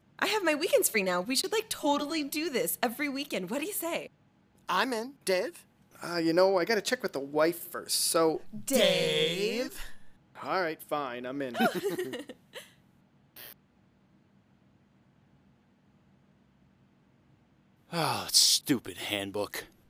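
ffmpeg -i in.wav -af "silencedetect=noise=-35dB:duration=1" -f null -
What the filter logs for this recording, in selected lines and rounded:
silence_start: 13.53
silence_end: 17.93 | silence_duration: 4.40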